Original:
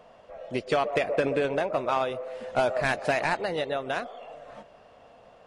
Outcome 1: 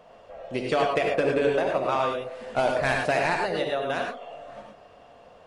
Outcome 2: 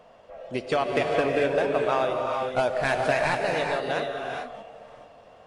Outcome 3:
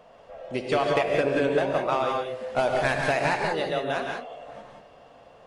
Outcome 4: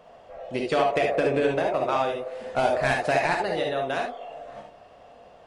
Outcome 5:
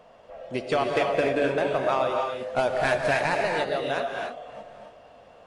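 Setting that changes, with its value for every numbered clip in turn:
reverb whose tail is shaped and stops, gate: 130, 470, 210, 90, 320 milliseconds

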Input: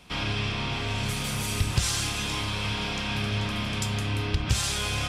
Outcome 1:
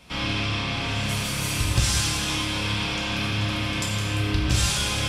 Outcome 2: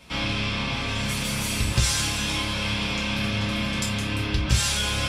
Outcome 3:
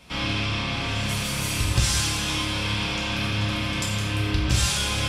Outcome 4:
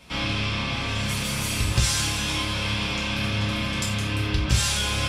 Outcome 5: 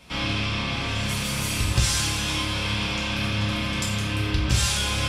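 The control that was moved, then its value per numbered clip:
reverb whose tail is shaped and stops, gate: 400, 80, 270, 120, 180 milliseconds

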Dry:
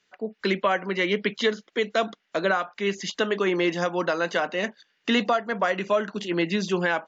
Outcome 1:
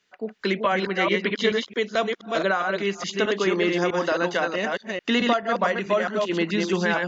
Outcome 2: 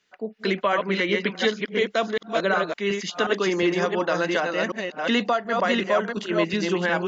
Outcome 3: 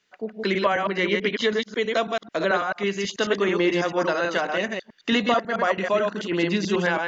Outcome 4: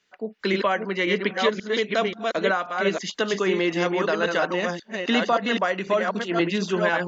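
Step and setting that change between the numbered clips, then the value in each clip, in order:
delay that plays each chunk backwards, delay time: 217, 363, 109, 533 milliseconds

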